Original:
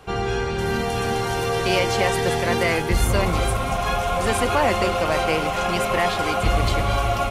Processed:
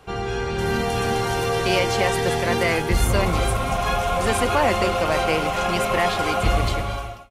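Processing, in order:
fade-out on the ending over 0.79 s
automatic gain control gain up to 4 dB
level −3 dB

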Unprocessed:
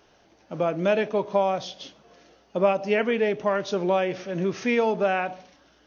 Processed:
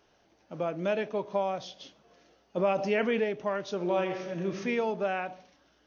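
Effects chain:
0:02.57–0:03.24: envelope flattener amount 50%
0:03.76–0:04.54: thrown reverb, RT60 0.99 s, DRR 3 dB
level −7 dB

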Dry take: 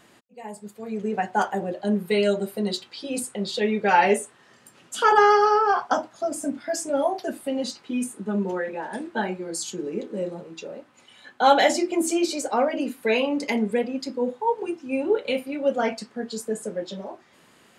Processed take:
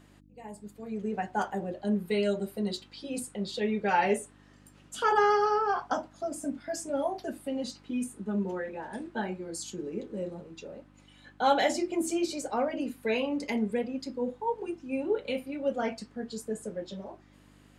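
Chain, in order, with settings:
low-shelf EQ 190 Hz +7.5 dB
hum with harmonics 50 Hz, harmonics 6, −51 dBFS −1 dB per octave
level −8 dB

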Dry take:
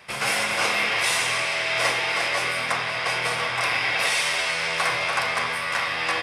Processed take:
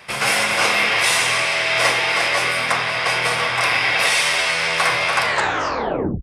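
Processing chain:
turntable brake at the end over 1.00 s
level +5.5 dB

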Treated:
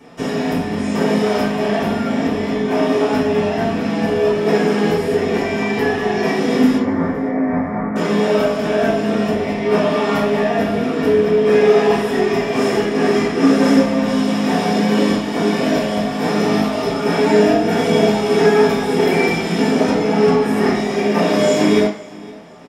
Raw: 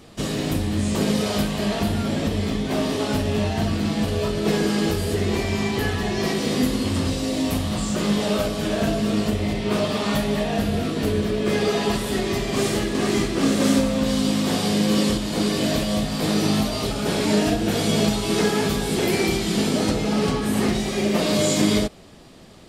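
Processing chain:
0:06.78–0:07.96: Butterworth low-pass 2,200 Hz 96 dB per octave
repeating echo 514 ms, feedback 27%, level −22 dB
convolution reverb RT60 0.50 s, pre-delay 3 ms, DRR −6 dB
level −7.5 dB

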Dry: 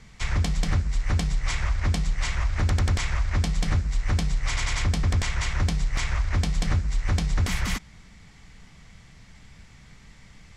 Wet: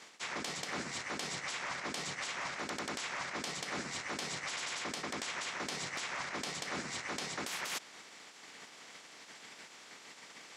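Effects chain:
ceiling on every frequency bin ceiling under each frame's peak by 25 dB
high-pass filter 270 Hz 12 dB per octave
reversed playback
downward compressor 6 to 1, threshold −32 dBFS, peak gain reduction 12.5 dB
reversed playback
level −5 dB

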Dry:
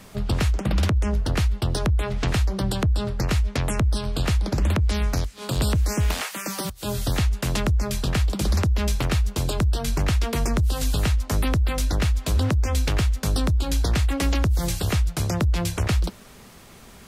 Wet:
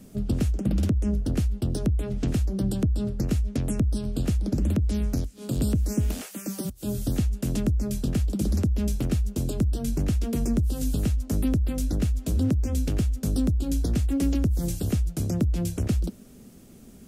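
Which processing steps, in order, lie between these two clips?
octave-band graphic EQ 250/1,000/2,000/4,000 Hz +9/−12/−8/−7 dB
level −4 dB

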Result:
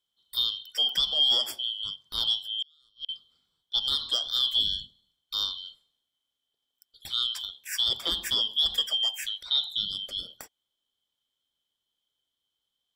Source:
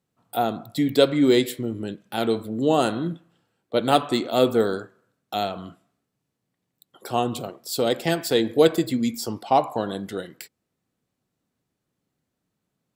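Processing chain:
band-splitting scrambler in four parts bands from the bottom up 2413
brickwall limiter −11.5 dBFS, peak gain reduction 9 dB
0:02.43–0:03.09: gate with flip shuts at −18 dBFS, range −37 dB
level −4 dB

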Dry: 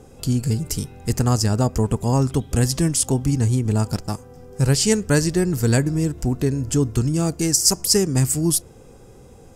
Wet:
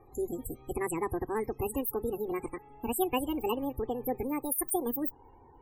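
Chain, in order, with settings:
gliding playback speed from 154% → 186%
spectral peaks only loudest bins 64
phaser with its sweep stopped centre 950 Hz, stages 8
level −8 dB

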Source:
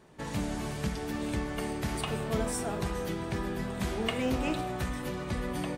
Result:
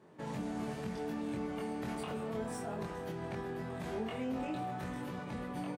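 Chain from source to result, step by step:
high-pass filter 130 Hz 12 dB per octave
high-shelf EQ 2,200 Hz −10.5 dB
brickwall limiter −29.5 dBFS, peak gain reduction 9.5 dB
double-tracking delay 23 ms −2 dB
slew-rate limiting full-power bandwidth 66 Hz
level −3 dB

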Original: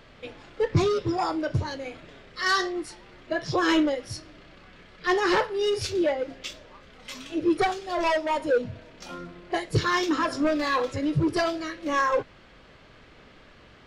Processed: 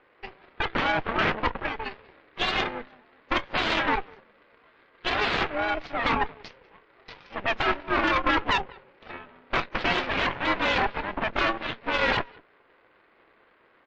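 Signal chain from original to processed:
wave folding −24.5 dBFS
single-sideband voice off tune −100 Hz 440–2,500 Hz
high-frequency loss of the air 77 metres
single-tap delay 193 ms −16 dB
harmonic generator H 3 −14 dB, 5 −33 dB, 7 −30 dB, 8 −9 dB, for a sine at −12.5 dBFS
level +6 dB
MP3 40 kbit/s 22,050 Hz

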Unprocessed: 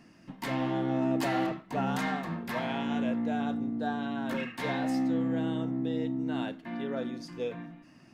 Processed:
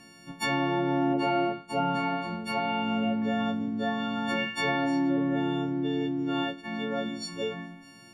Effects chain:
every partial snapped to a pitch grid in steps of 4 semitones
treble cut that deepens with the level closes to 2,100 Hz, closed at −24 dBFS
0:01.13–0:03.22: notch comb filter 160 Hz
level +2.5 dB

